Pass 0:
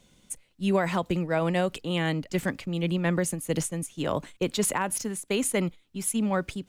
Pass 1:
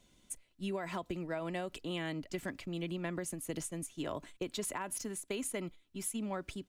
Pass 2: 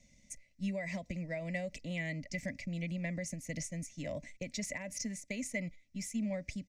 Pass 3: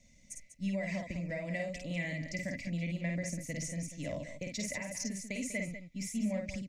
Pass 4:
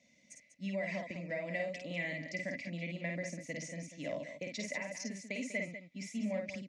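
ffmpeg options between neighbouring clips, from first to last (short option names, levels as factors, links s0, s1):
-af "aecho=1:1:3:0.34,acompressor=threshold=0.0398:ratio=6,volume=0.473"
-af "firequalizer=gain_entry='entry(240,0);entry(370,-21);entry(570,1);entry(810,-16);entry(1400,-25);entry(2000,6);entry(3100,-13);entry(5700,5);entry(9900,-15)':delay=0.05:min_phase=1,volume=1.5"
-af "aecho=1:1:52|195:0.668|0.299"
-af "highpass=250,lowpass=4600,volume=1.12"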